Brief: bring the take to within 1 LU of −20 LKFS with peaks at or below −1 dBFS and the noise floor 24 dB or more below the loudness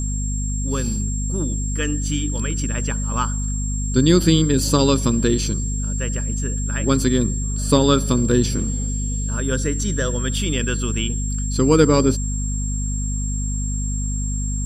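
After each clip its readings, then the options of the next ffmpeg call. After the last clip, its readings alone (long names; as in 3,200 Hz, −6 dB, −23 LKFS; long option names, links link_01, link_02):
mains hum 50 Hz; hum harmonics up to 250 Hz; level of the hum −21 dBFS; interfering tone 7,500 Hz; level of the tone −29 dBFS; integrated loudness −21.0 LKFS; sample peak −1.5 dBFS; target loudness −20.0 LKFS
→ -af "bandreject=frequency=50:width_type=h:width=6,bandreject=frequency=100:width_type=h:width=6,bandreject=frequency=150:width_type=h:width=6,bandreject=frequency=200:width_type=h:width=6,bandreject=frequency=250:width_type=h:width=6"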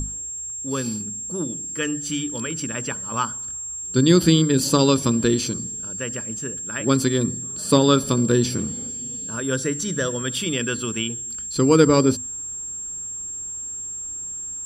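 mains hum none found; interfering tone 7,500 Hz; level of the tone −29 dBFS
→ -af "bandreject=frequency=7500:width=30"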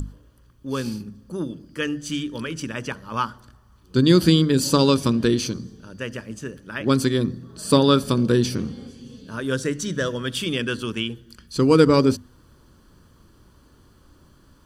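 interfering tone none found; integrated loudness −22.0 LKFS; sample peak −2.0 dBFS; target loudness −20.0 LKFS
→ -af "volume=2dB,alimiter=limit=-1dB:level=0:latency=1"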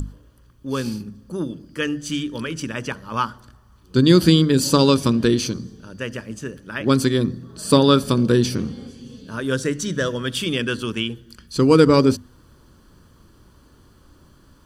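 integrated loudness −20.0 LKFS; sample peak −1.0 dBFS; background noise floor −53 dBFS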